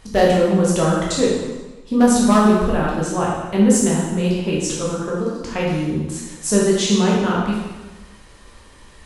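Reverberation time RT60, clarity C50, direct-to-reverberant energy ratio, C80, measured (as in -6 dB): 1.2 s, 0.5 dB, -5.0 dB, 3.0 dB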